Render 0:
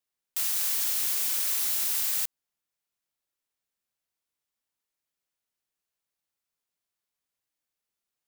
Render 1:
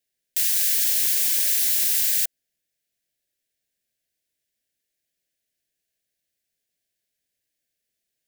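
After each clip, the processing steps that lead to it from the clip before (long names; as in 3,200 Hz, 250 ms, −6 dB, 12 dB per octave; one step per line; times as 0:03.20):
elliptic band-stop filter 680–1,600 Hz, stop band 60 dB
level +6.5 dB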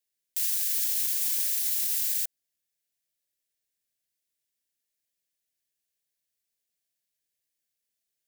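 high-shelf EQ 3,300 Hz +6.5 dB
brickwall limiter −9 dBFS, peak gain reduction 6.5 dB
level −8.5 dB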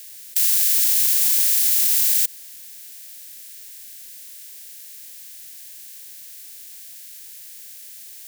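compressor on every frequency bin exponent 0.4
level +6 dB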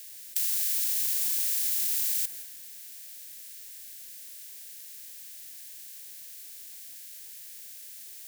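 downward compressor 2.5 to 1, threshold −22 dBFS, peak gain reduction 5.5 dB
on a send at −8.5 dB: convolution reverb RT60 1.1 s, pre-delay 152 ms
on the sum: level −5 dB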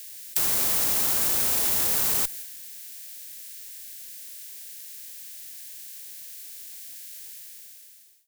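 fade-out on the ending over 1.01 s
in parallel at −5 dB: comparator with hysteresis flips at −25 dBFS
on the sum: level +3.5 dB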